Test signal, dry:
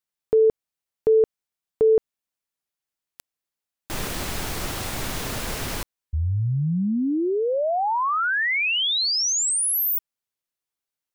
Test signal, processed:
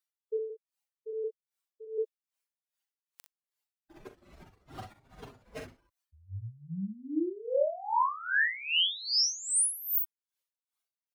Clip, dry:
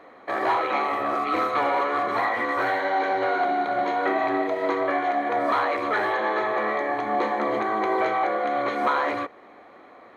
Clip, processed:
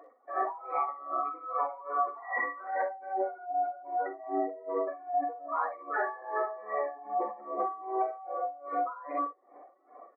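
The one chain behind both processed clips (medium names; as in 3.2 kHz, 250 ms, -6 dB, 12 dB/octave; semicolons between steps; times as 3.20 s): spectral contrast enhancement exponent 2.8; high-pass 680 Hz 6 dB/octave; peak limiter -24 dBFS; early reflections 42 ms -6 dB, 62 ms -6 dB; logarithmic tremolo 2.5 Hz, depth 19 dB; trim +1 dB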